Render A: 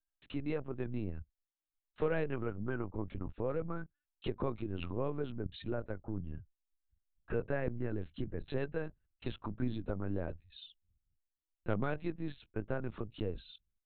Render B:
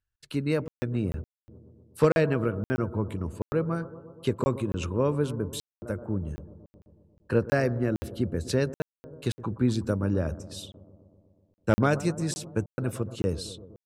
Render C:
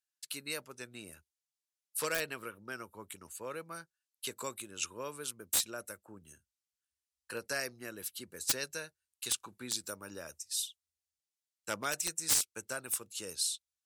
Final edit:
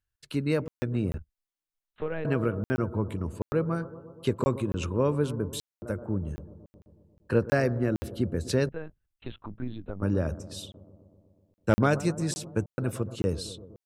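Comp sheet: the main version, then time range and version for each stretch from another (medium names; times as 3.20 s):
B
1.18–2.25 s: from A
8.69–10.02 s: from A
not used: C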